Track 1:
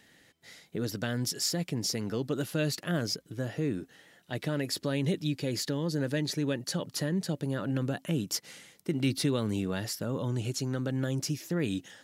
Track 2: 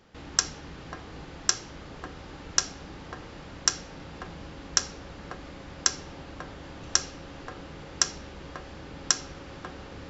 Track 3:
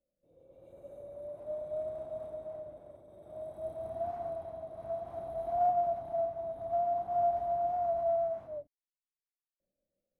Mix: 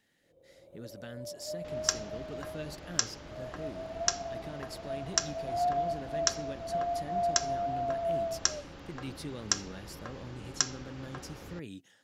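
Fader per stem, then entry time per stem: -13.0, -4.5, -1.5 dB; 0.00, 1.50, 0.00 s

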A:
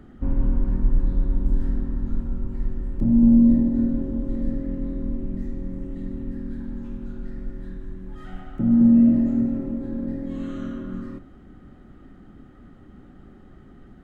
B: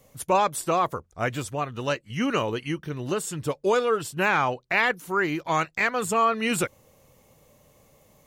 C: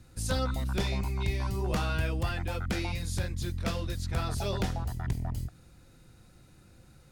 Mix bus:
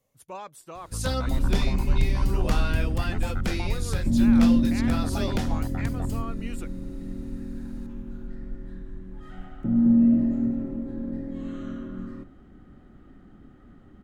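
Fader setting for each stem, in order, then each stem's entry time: -3.5, -17.5, +2.5 dB; 1.05, 0.00, 0.75 s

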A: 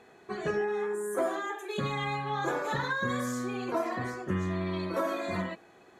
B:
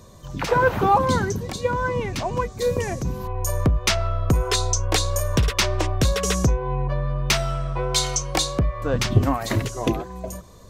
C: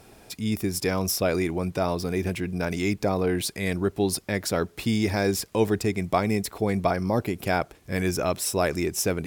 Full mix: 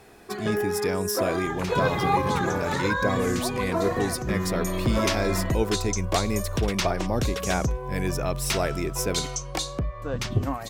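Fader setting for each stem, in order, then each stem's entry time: +3.0, -7.0, -3.0 dB; 0.00, 1.20, 0.00 s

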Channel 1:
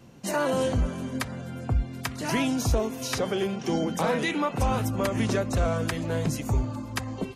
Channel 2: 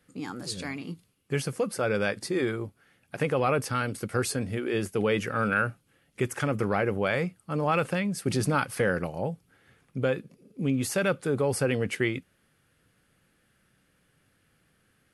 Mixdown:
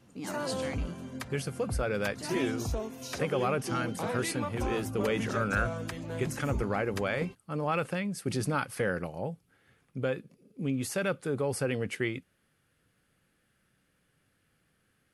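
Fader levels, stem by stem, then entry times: -9.0, -4.5 dB; 0.00, 0.00 s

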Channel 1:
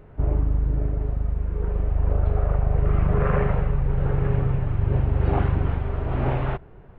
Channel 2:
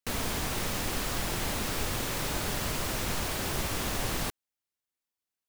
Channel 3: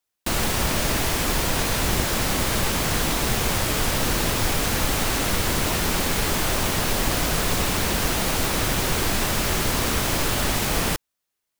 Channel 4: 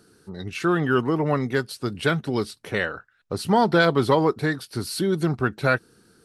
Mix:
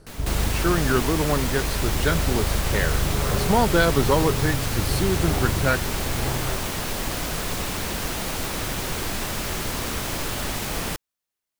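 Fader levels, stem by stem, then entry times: -4.5, -7.0, -5.0, -1.5 dB; 0.00, 0.00, 0.00, 0.00 s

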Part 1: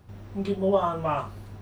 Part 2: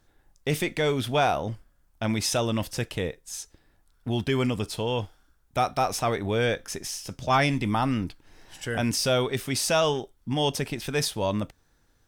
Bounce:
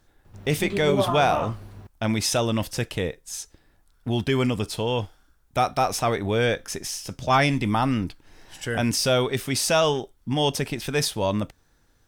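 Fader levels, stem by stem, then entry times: -1.0, +2.5 dB; 0.25, 0.00 s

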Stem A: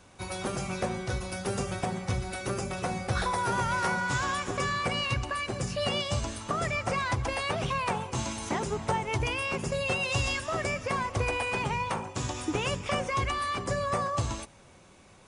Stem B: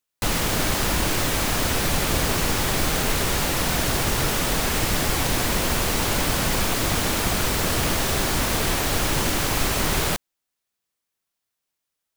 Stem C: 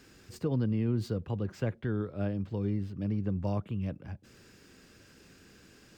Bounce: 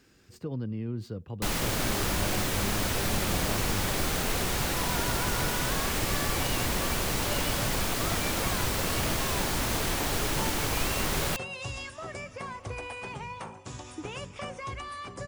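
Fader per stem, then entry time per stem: -8.5, -6.5, -4.5 dB; 1.50, 1.20, 0.00 s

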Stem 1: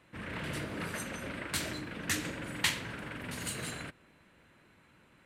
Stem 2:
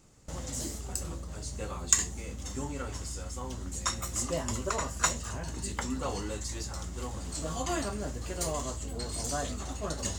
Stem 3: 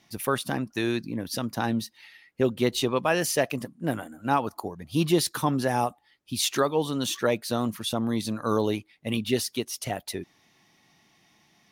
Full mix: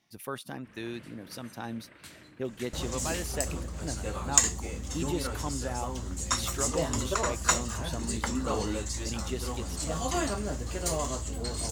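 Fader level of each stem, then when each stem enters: -14.5, +2.5, -11.0 dB; 0.50, 2.45, 0.00 s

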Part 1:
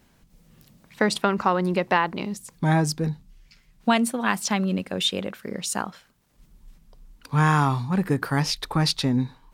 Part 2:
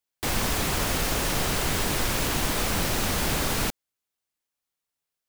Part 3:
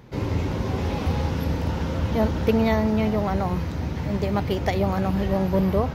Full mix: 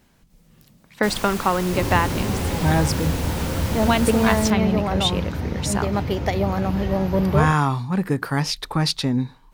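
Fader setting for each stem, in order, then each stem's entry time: +1.0, -6.0, +1.0 dB; 0.00, 0.80, 1.60 s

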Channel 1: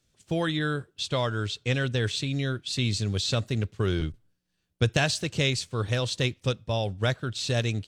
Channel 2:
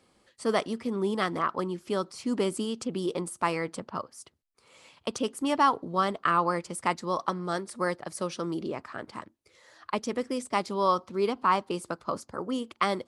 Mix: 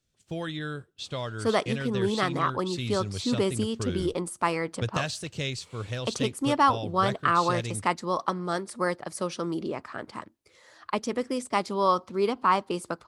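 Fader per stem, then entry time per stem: -6.5, +1.5 dB; 0.00, 1.00 s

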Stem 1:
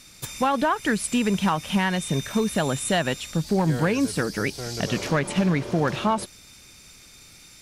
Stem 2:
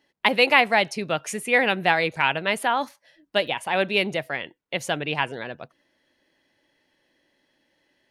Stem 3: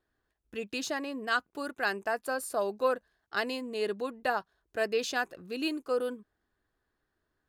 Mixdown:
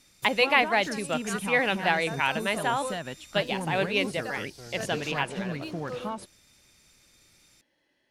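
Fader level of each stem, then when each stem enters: -12.0, -4.5, -8.0 dB; 0.00, 0.00, 0.00 s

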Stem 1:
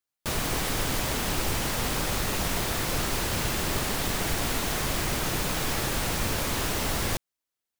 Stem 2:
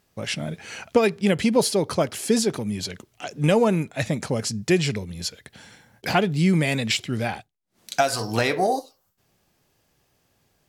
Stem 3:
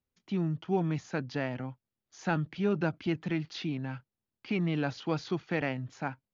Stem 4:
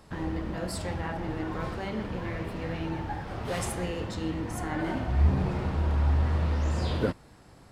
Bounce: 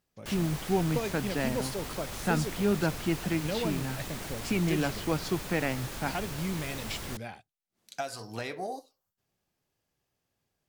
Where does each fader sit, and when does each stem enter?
-11.5 dB, -14.5 dB, +1.5 dB, off; 0.00 s, 0.00 s, 0.00 s, off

